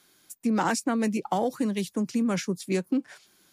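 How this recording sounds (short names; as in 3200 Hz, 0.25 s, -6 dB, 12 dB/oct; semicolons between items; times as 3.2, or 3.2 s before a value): noise floor -63 dBFS; spectral tilt -5.0 dB/oct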